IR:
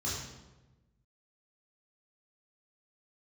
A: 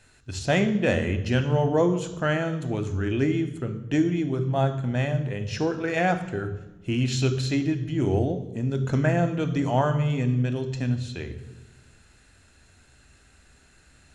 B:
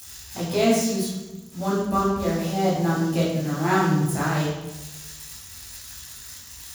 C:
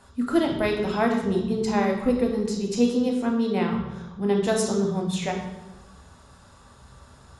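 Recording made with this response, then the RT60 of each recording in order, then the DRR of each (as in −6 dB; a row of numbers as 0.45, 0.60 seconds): B; 1.1, 1.1, 1.1 seconds; 8.0, −8.0, 1.5 decibels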